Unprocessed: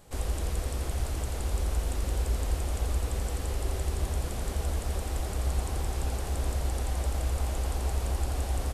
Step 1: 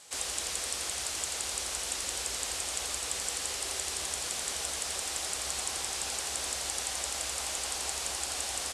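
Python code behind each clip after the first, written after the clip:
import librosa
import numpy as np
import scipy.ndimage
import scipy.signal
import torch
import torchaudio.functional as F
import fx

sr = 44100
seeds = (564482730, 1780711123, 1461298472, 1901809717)

y = fx.weighting(x, sr, curve='ITU-R 468')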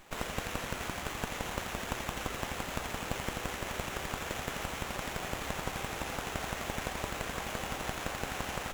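y = fx.running_max(x, sr, window=9)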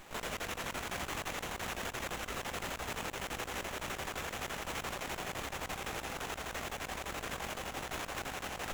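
y = fx.over_compress(x, sr, threshold_db=-40.0, ratio=-0.5)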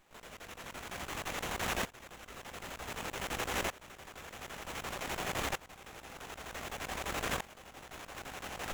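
y = fx.tremolo_decay(x, sr, direction='swelling', hz=0.54, depth_db=21)
y = F.gain(torch.from_numpy(y), 6.5).numpy()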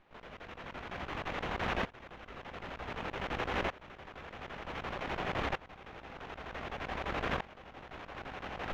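y = fx.air_absorb(x, sr, metres=280.0)
y = F.gain(torch.from_numpy(y), 3.0).numpy()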